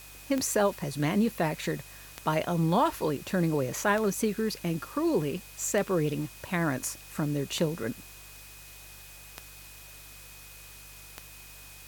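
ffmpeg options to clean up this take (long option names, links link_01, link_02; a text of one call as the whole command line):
ffmpeg -i in.wav -af "adeclick=threshold=4,bandreject=frequency=49.3:width_type=h:width=4,bandreject=frequency=98.6:width_type=h:width=4,bandreject=frequency=147.9:width_type=h:width=4,bandreject=frequency=2500:width=30,afwtdn=0.0035" out.wav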